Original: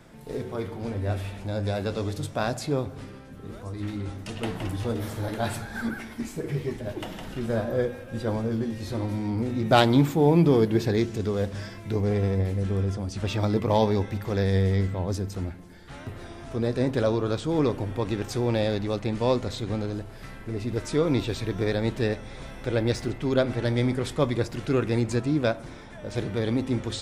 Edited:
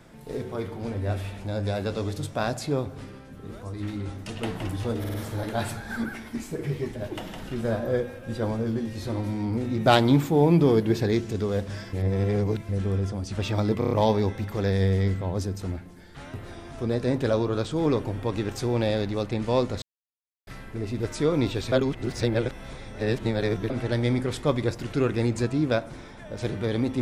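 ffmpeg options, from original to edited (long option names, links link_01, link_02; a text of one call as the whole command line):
ffmpeg -i in.wav -filter_complex "[0:a]asplit=14[link_01][link_02][link_03][link_04][link_05][link_06][link_07][link_08][link_09][link_10][link_11][link_12][link_13][link_14];[link_01]atrim=end=5.042[link_15];[link_02]atrim=start=4.988:end=5.042[link_16];[link_03]atrim=start=4.988:end=5.042[link_17];[link_04]atrim=start=4.988:end=11.782[link_18];[link_05]atrim=start=11.778:end=12.542,asetpts=PTS-STARTPTS,areverse[link_19];[link_06]atrim=start=12.538:end=13.672[link_20];[link_07]atrim=start=13.638:end=13.672[link_21];[link_08]atrim=start=13.638:end=13.672[link_22];[link_09]atrim=start=13.638:end=13.672[link_23];[link_10]atrim=start=13.638:end=19.55,asetpts=PTS-STARTPTS,afade=type=out:start_time=5.908:duration=0.004:curve=hsin[link_24];[link_11]atrim=start=19.55:end=20.2,asetpts=PTS-STARTPTS,volume=0[link_25];[link_12]atrim=start=20.2:end=21.452,asetpts=PTS-STARTPTS,afade=type=in:duration=0.004:curve=hsin[link_26];[link_13]atrim=start=21.448:end=23.432,asetpts=PTS-STARTPTS,areverse[link_27];[link_14]atrim=start=23.428[link_28];[link_15][link_16]acrossfade=duration=0.004:curve1=hsin:curve2=hsin[link_29];[link_29][link_17]acrossfade=duration=0.004:curve1=hsin:curve2=hsin[link_30];[link_30][link_18]acrossfade=duration=0.004:curve1=hsin:curve2=hsin[link_31];[link_31][link_19]acrossfade=duration=0.004:curve1=hsin:curve2=hsin[link_32];[link_32][link_20]acrossfade=duration=0.004:curve1=hsin:curve2=hsin[link_33];[link_33][link_21]acrossfade=duration=0.004:curve1=hsin:curve2=hsin[link_34];[link_34][link_22]acrossfade=duration=0.004:curve1=hsin:curve2=hsin[link_35];[link_35][link_23]acrossfade=duration=0.004:curve1=hsin:curve2=hsin[link_36];[link_24][link_25][link_26]concat=n=3:v=0:a=1[link_37];[link_36][link_37]acrossfade=duration=0.004:curve1=hsin:curve2=hsin[link_38];[link_38][link_27]acrossfade=duration=0.004:curve1=hsin:curve2=hsin[link_39];[link_39][link_28]acrossfade=duration=0.004:curve1=hsin:curve2=hsin" out.wav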